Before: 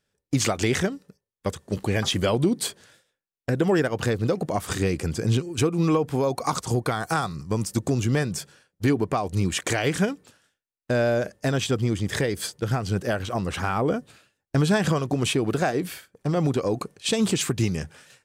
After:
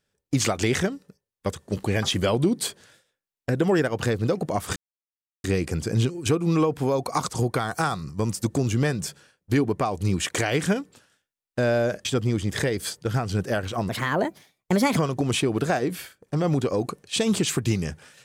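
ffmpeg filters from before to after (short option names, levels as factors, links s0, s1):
-filter_complex "[0:a]asplit=5[s0][s1][s2][s3][s4];[s0]atrim=end=4.76,asetpts=PTS-STARTPTS,afade=t=out:st=4.756:d=0.004:c=hsin,apad=pad_dur=0.68[s5];[s1]atrim=start=4.76:end=11.372,asetpts=PTS-STARTPTS,afade=t=in:d=0.004:c=hsin[s6];[s2]atrim=start=11.618:end=13.464[s7];[s3]atrim=start=13.46:end=14.89,asetpts=PTS-STARTPTS,asetrate=58653,aresample=44100[s8];[s4]atrim=start=14.886[s9];[s5][s6]concat=n=2:v=0:a=1[s10];[s10][s7]acrossfade=d=0.004:c1=hsin:c2=hsin[s11];[s11][s8]acrossfade=d=0.004:c1=hsin:c2=hsin[s12];[s12][s9]acrossfade=d=0.004:c1=hsin:c2=hsin"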